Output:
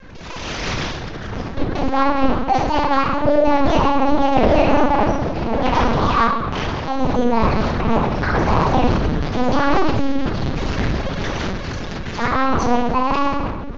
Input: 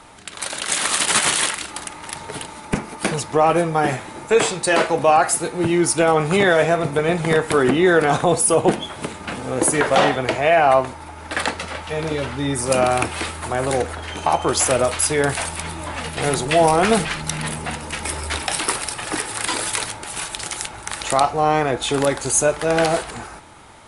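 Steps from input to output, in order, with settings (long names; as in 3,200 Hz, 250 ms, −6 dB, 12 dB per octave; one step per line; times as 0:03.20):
spectral tilt −3.5 dB per octave
soft clipping −9.5 dBFS, distortion −13 dB
rectangular room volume 3,100 cubic metres, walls mixed, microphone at 4.9 metres
linear-prediction vocoder at 8 kHz pitch kept
wrong playback speed 45 rpm record played at 78 rpm
level −8 dB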